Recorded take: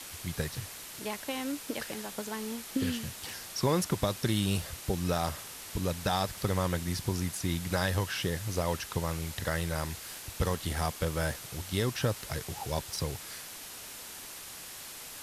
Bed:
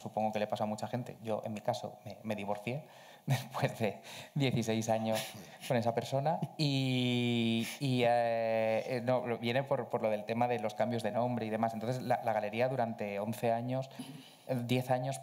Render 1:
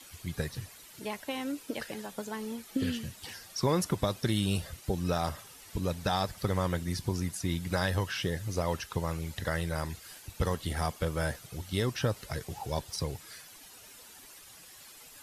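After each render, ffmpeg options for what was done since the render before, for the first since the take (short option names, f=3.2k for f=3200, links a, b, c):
-af "afftdn=nr=11:nf=-45"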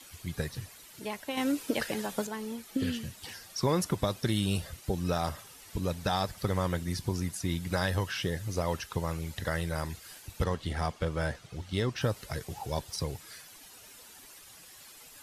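-filter_complex "[0:a]asettb=1/sr,asplit=3[a][b][c];[a]atrim=end=1.374[d];[b]atrim=start=1.37:end=2.27,asetpts=PTS-STARTPTS,afade=t=in:d=0.004:c=qsin,afade=t=out:st=0.896:d=0.004:c=qsin,acontrast=56[e];[c]atrim=start=2.266[f];[d][e]acrossfade=d=0.004:c1=hsin:c2=qsin[g];[g][f]acrossfade=d=0.004:c1=qsin:c2=hsin,asettb=1/sr,asplit=3[h][i][j];[h]atrim=end=10.444[k];[i]atrim=start=10.44:end=12.01,asetpts=PTS-STARTPTS,afade=t=in:d=0.004:c=qsin,afade=t=out:st=1.566:d=0.004:c=qsin,adynamicsmooth=sensitivity=5:basefreq=6.4k[l];[j]atrim=start=12.006[m];[k][l]acrossfade=d=0.004:c1=hsin:c2=qsin[n];[n][m]acrossfade=d=0.004:c1=qsin:c2=hsin"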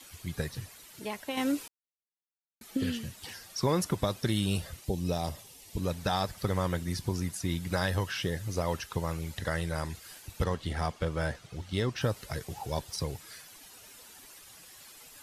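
-filter_complex "[0:a]asettb=1/sr,asplit=3[a][b][c];[a]atrim=end=4.844[d];[b]atrim=start=4.84:end=5.78,asetpts=PTS-STARTPTS,afade=t=in:d=0.004:c=qsin,afade=t=out:st=0.936:d=0.004:c=qsin,equalizer=f=1.4k:w=1.8:g=-13.5[e];[c]atrim=start=5.776[f];[d][e]acrossfade=d=0.004:c1=hsin:c2=qsin[g];[g][f]acrossfade=d=0.004:c1=qsin:c2=hsin,asettb=1/sr,asplit=3[h][i][j];[h]atrim=end=9.394[k];[i]atrim=start=9.39:end=9.95,asetpts=PTS-STARTPTS,afade=t=in:d=0.004:c=qsin,afade=t=out:st=0.556:d=0.004:c=qsin,lowpass=f=12k:w=0.5412,lowpass=f=12k:w=1.3066[l];[j]atrim=start=9.946[m];[k][l]acrossfade=d=0.004:c1=hsin:c2=qsin[n];[n][m]acrossfade=d=0.004:c1=qsin:c2=hsin,asplit=3[o][p][q];[o]atrim=end=1.68,asetpts=PTS-STARTPTS,afade=t=out:st=1.676:d=0.004:c=hsin[r];[p]atrim=start=1.68:end=2.61,asetpts=PTS-STARTPTS,volume=0[s];[q]atrim=start=2.61,asetpts=PTS-STARTPTS,afade=t=in:d=0.004:c=hsin[t];[r][s][t]concat=n=3:v=0:a=1"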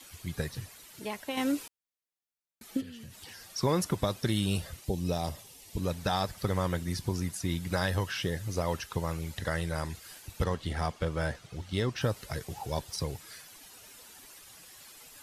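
-filter_complex "[0:a]asplit=3[a][b][c];[a]afade=t=out:st=2.8:d=0.02[d];[b]acompressor=threshold=-43dB:ratio=6:attack=3.2:release=140:knee=1:detection=peak,afade=t=in:st=2.8:d=0.02,afade=t=out:st=3.49:d=0.02[e];[c]afade=t=in:st=3.49:d=0.02[f];[d][e][f]amix=inputs=3:normalize=0"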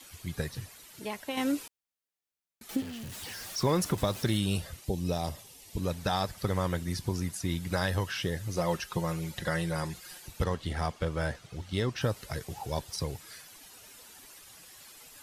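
-filter_complex "[0:a]asettb=1/sr,asplit=3[a][b][c];[a]atrim=end=2.694[d];[b]atrim=start=2.69:end=4.37,asetpts=PTS-STARTPTS,afade=t=in:d=0.004:c=qsin,afade=t=out:st=1.676:d=0.004:c=qsin,aeval=exprs='val(0)+0.5*0.01*sgn(val(0))':c=same[e];[c]atrim=start=4.366[f];[d][e]acrossfade=d=0.004:c1=hsin:c2=qsin[g];[g][f]acrossfade=d=0.004:c1=qsin:c2=hsin,asettb=1/sr,asplit=3[h][i][j];[h]atrim=end=8.564[k];[i]atrim=start=8.56:end=10.3,asetpts=PTS-STARTPTS,afade=t=in:d=0.004:c=qsin,afade=t=out:st=1.736:d=0.004:c=qsin,aecho=1:1:5.6:0.65,atrim=end_sample=76734[l];[j]atrim=start=10.296[m];[k][l]acrossfade=d=0.004:c1=hsin:c2=qsin[n];[n][m]acrossfade=d=0.004:c1=qsin:c2=hsin"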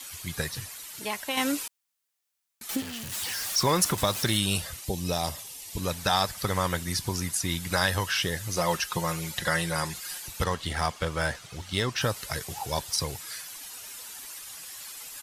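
-af "firequalizer=gain_entry='entry(360,0);entry(990,7);entry(7400,11)':delay=0.05:min_phase=1"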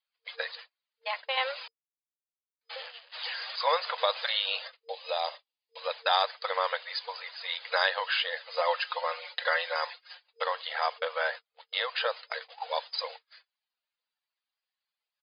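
-af "agate=range=-43dB:threshold=-35dB:ratio=16:detection=peak,afftfilt=real='re*between(b*sr/4096,460,5000)':imag='im*between(b*sr/4096,460,5000)':win_size=4096:overlap=0.75"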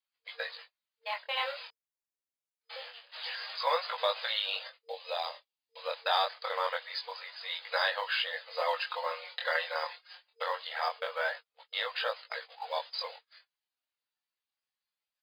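-af "acrusher=bits=9:mode=log:mix=0:aa=0.000001,flanger=delay=18:depth=7.4:speed=0.25"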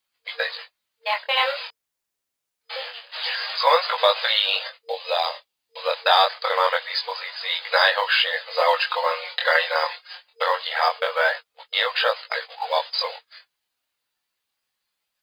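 -af "volume=12dB,alimiter=limit=-3dB:level=0:latency=1"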